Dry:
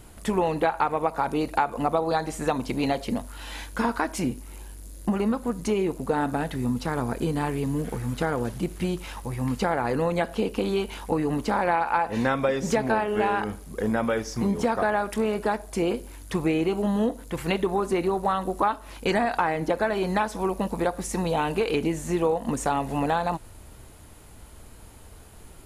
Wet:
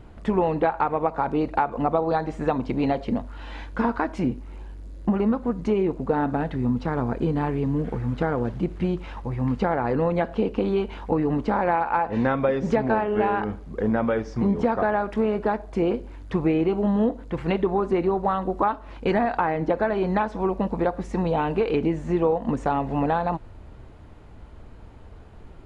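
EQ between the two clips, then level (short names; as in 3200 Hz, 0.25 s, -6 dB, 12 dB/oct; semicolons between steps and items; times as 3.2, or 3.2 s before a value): tape spacing loss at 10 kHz 30 dB; +3.5 dB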